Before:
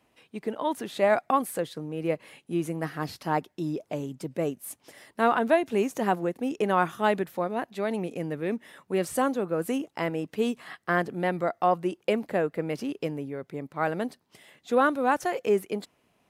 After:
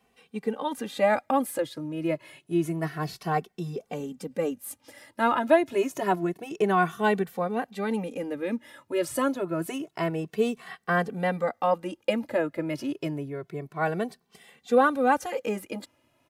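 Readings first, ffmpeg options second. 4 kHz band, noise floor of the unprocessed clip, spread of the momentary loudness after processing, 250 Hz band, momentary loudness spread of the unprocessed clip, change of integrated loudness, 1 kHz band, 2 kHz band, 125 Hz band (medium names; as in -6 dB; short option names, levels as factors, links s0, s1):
+0.5 dB, -71 dBFS, 13 LU, +0.5 dB, 11 LU, +0.5 dB, 0.0 dB, +1.0 dB, +1.0 dB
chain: -filter_complex "[0:a]asplit=2[s0][s1];[s1]adelay=2.2,afreqshift=0.28[s2];[s0][s2]amix=inputs=2:normalize=1,volume=1.5"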